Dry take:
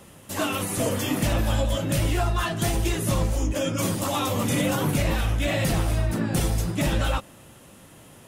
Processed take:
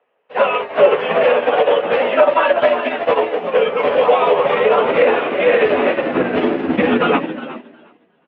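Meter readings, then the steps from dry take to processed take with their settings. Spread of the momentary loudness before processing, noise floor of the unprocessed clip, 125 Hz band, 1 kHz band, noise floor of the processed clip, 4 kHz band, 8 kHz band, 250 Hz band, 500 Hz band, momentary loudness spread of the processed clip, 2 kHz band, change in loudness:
2 LU, -49 dBFS, -11.5 dB, +13.5 dB, -59 dBFS, +3.5 dB, under -35 dB, +4.5 dB, +17.0 dB, 5 LU, +11.5 dB, +9.5 dB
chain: notch 410 Hz, Q 12; vibrato 9.9 Hz 14 cents; mistuned SSB -88 Hz 170–2900 Hz; doubler 12 ms -9 dB; frequency-shifting echo 0.362 s, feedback 45%, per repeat +77 Hz, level -8 dB; high-pass sweep 530 Hz -> 220 Hz, 4.44–8.02; maximiser +18 dB; upward expander 2.5:1, over -28 dBFS

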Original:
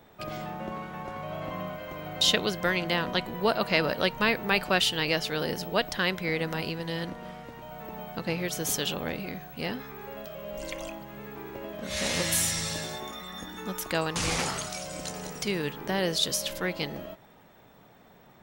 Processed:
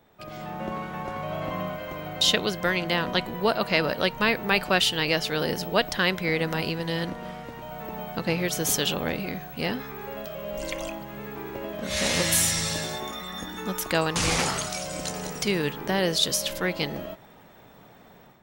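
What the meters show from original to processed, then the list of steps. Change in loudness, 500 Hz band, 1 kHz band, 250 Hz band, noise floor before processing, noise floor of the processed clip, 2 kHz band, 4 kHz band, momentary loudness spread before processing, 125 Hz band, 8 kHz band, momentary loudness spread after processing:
+3.0 dB, +3.0 dB, +3.0 dB, +3.5 dB, -56 dBFS, -52 dBFS, +3.0 dB, +3.0 dB, 15 LU, +3.5 dB, +4.0 dB, 14 LU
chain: AGC gain up to 9.5 dB; gain -5 dB

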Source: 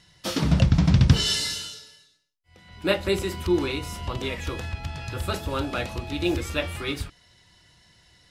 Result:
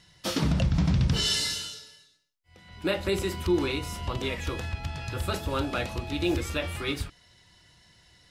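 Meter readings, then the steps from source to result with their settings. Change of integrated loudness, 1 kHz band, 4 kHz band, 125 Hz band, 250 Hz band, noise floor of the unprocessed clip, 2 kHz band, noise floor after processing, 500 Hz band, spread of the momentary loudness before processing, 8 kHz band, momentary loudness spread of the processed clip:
-3.5 dB, -2.0 dB, -2.0 dB, -5.0 dB, -3.0 dB, -60 dBFS, -2.5 dB, -61 dBFS, -2.5 dB, 14 LU, -1.5 dB, 10 LU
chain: limiter -15 dBFS, peak gain reduction 10.5 dB; gain -1 dB

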